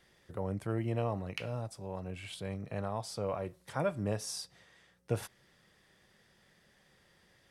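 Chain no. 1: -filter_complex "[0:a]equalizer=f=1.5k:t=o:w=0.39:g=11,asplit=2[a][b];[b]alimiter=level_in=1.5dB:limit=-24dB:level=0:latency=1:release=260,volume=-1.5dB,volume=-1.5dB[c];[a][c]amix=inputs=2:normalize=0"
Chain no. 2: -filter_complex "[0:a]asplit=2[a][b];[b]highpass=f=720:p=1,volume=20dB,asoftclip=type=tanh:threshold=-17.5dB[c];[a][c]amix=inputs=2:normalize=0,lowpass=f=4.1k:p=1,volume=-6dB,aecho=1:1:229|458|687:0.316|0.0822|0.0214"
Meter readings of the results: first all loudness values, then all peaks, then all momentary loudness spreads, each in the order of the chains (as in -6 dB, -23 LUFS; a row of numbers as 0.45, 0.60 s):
-33.0, -31.5 LUFS; -14.0, -17.5 dBFS; 7, 12 LU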